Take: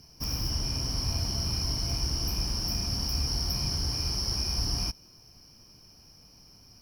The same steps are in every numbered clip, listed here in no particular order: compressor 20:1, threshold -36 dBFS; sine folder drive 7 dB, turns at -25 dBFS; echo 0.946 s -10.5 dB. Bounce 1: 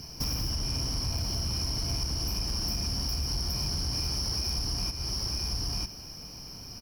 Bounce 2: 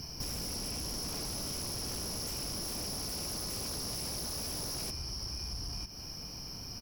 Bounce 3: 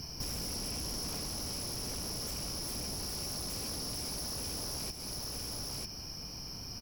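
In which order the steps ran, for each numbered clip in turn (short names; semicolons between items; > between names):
echo > compressor > sine folder; echo > sine folder > compressor; sine folder > echo > compressor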